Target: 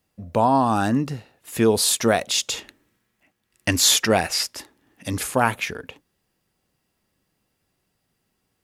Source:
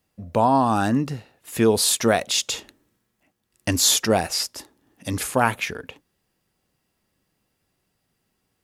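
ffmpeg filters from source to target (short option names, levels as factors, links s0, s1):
-filter_complex "[0:a]asettb=1/sr,asplit=3[s0][s1][s2];[s0]atrim=end=2.574[s3];[s1]atrim=start=2.57:end=5.08,asetpts=PTS-STARTPTS,afade=t=in:d=0.004:c=qsin,afade=t=out:st=2.506:d=0.004:c=qsin,equalizer=f=2100:t=o:w=1.4:g=6[s4];[s2]atrim=start=5.076[s5];[s3][s4]acrossfade=d=0.004:c1=hsin:c2=qsin[s6];[s6][s5]acrossfade=d=0.004:c1=qsin:c2=hsin"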